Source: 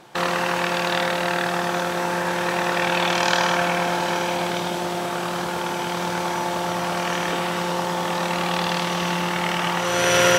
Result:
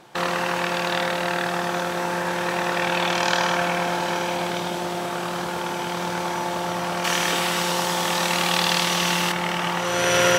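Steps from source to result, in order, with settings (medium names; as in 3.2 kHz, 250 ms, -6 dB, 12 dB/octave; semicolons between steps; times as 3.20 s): 7.04–9.32 s: treble shelf 2.2 kHz +10.5 dB; trim -1.5 dB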